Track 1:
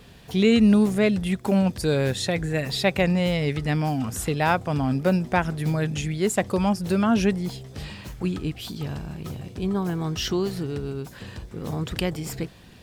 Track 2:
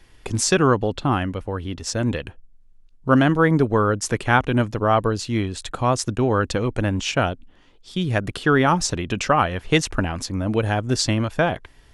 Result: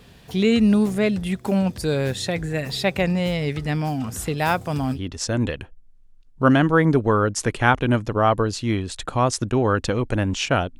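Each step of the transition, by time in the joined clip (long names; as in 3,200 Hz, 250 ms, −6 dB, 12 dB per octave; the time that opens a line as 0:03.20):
track 1
0:04.38–0:04.99: high-shelf EQ 7,400 Hz +11.5 dB
0:04.95: continue with track 2 from 0:01.61, crossfade 0.08 s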